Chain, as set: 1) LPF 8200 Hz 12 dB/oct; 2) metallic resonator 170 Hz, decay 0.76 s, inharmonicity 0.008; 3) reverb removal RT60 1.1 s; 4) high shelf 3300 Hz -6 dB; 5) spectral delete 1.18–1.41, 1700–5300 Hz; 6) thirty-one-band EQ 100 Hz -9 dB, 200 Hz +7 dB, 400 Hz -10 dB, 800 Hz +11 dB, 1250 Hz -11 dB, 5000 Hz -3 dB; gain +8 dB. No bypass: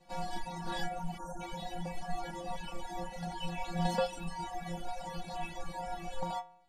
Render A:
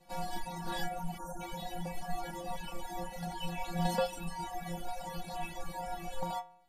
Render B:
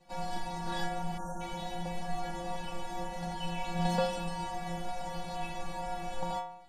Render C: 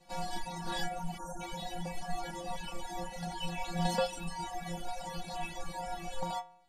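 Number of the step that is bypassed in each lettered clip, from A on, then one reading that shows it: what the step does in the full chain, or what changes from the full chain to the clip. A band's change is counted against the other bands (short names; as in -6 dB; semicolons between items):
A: 1, 8 kHz band +2.5 dB; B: 3, loudness change +2.5 LU; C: 4, 8 kHz band +5.0 dB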